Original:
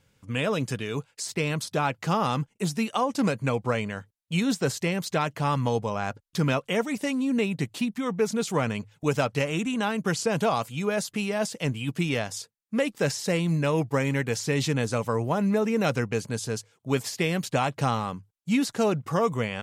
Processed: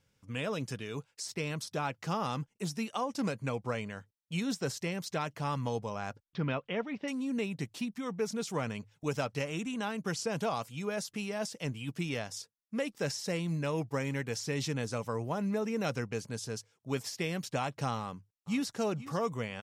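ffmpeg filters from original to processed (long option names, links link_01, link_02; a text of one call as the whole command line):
ffmpeg -i in.wav -filter_complex "[0:a]asettb=1/sr,asplit=3[link_01][link_02][link_03];[link_01]atrim=end=6.244[link_04];[link_02]atrim=start=6.24:end=7.08,asetpts=PTS-STARTPTS,afade=type=in:duration=0.004:curve=qsin,afade=type=out:start_time=0.836:duration=0.004:curve=qsin,lowpass=frequency=3500:width=0.5412,lowpass=frequency=3500:width=1.3066[link_05];[link_03]atrim=start=7.076[link_06];[link_04][link_05]acrossfade=duration=0.004:curve1=hsin:curve2=qsin[link_07];[link_07][link_06]acrossfade=duration=0.004:curve1=qsin:curve2=hsin,asplit=2[link_08][link_09];[link_09]afade=type=in:start_time=17.98:duration=0.01,afade=type=out:start_time=18.79:duration=0.01,aecho=0:1:480|960:0.149624|0.0224435[link_10];[link_08][link_10]amix=inputs=2:normalize=0,equalizer=frequency=5500:width=5.3:gain=6,volume=-8.5dB" out.wav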